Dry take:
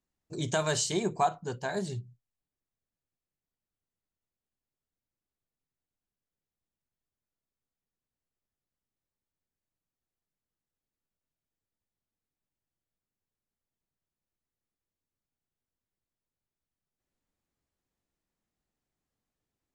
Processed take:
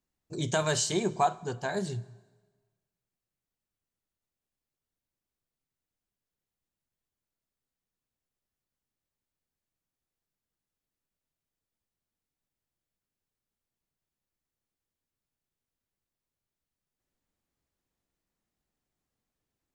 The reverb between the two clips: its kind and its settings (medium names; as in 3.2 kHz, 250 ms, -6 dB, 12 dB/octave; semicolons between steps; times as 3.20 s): plate-style reverb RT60 1.4 s, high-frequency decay 0.9×, DRR 19 dB; trim +1 dB